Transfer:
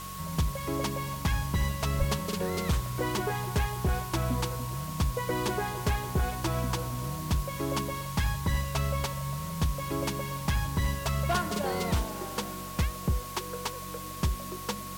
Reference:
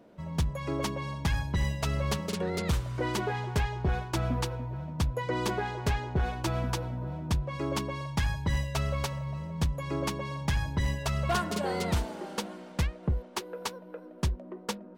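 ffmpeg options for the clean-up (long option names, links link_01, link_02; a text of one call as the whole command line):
ffmpeg -i in.wav -filter_complex "[0:a]bandreject=frequency=46.8:width_type=h:width=4,bandreject=frequency=93.6:width_type=h:width=4,bandreject=frequency=140.4:width_type=h:width=4,bandreject=frequency=187.2:width_type=h:width=4,bandreject=frequency=1100:width=30,asplit=3[link_01][link_02][link_03];[link_01]afade=type=out:start_time=1.98:duration=0.02[link_04];[link_02]highpass=frequency=140:width=0.5412,highpass=frequency=140:width=1.3066,afade=type=in:start_time=1.98:duration=0.02,afade=type=out:start_time=2.1:duration=0.02[link_05];[link_03]afade=type=in:start_time=2.1:duration=0.02[link_06];[link_04][link_05][link_06]amix=inputs=3:normalize=0,afwtdn=0.0063" out.wav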